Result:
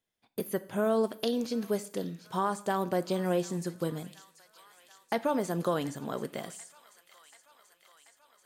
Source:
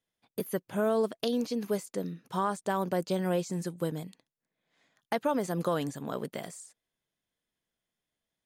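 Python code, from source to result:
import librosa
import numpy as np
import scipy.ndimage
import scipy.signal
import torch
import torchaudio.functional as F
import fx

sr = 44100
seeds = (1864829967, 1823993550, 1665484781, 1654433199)

y = fx.echo_wet_highpass(x, sr, ms=735, feedback_pct=72, hz=1700.0, wet_db=-14.5)
y = fx.rev_double_slope(y, sr, seeds[0], early_s=0.53, late_s=2.3, knee_db=-27, drr_db=12.5)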